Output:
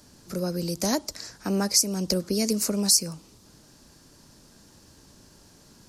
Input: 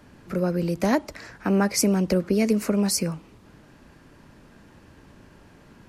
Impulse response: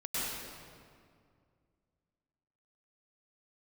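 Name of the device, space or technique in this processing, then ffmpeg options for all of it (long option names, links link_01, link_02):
over-bright horn tweeter: -af "highshelf=frequency=3500:width_type=q:width=1.5:gain=13.5,alimiter=limit=-3.5dB:level=0:latency=1:release=248,volume=-4.5dB"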